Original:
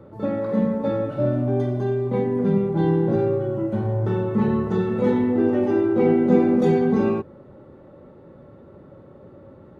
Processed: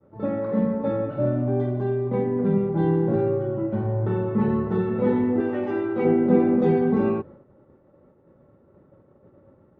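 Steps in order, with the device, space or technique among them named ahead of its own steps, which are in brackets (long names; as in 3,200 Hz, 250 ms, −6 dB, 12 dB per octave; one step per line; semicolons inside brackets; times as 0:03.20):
hearing-loss simulation (low-pass filter 2,500 Hz 12 dB per octave; downward expander −38 dBFS)
0:05.40–0:06.05: tilt shelving filter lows −6 dB
level −1.5 dB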